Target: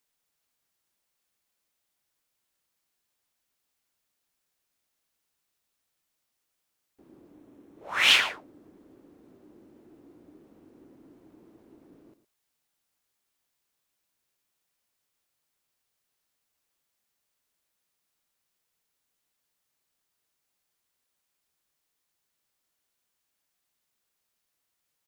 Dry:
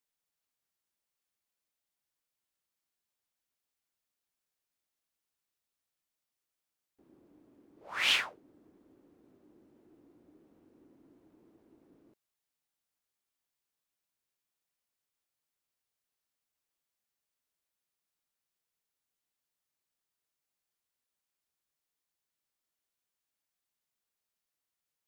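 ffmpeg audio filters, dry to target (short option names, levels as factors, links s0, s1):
-filter_complex "[0:a]asettb=1/sr,asplit=3[s0][s1][s2];[s0]atrim=end=7.334[s3];[s1]atrim=start=7.33:end=8.1,asetpts=PTS-STARTPTS,afade=t=in:d=0.004:c=qsin,afade=t=out:st=0.766:d=0.004:c=qsin,bandreject=f=4700:w=9.3[s4];[s2]atrim=start=8.096[s5];[s3][s4]acrossfade=d=0.004:c1=hsin:c2=qsin[s6];[s6][s5]acrossfade=d=0.004:c1=qsin:c2=hsin,asplit=2[s7][s8];[s8]adelay=110.8,volume=0.224,highshelf=f=4000:g=-2.49[s9];[s7][s9]amix=inputs=2:normalize=0,volume=2.51"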